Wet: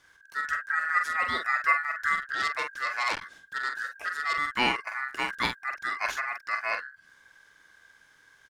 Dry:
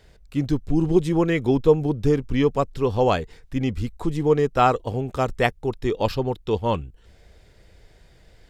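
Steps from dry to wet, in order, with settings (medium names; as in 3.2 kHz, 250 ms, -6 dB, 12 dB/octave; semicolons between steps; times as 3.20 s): treble shelf 2.8 kHz +6.5 dB; ring modulator 1.6 kHz; doubling 45 ms -6 dB; 2.22–4.37 s: transformer saturation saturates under 3.4 kHz; trim -6 dB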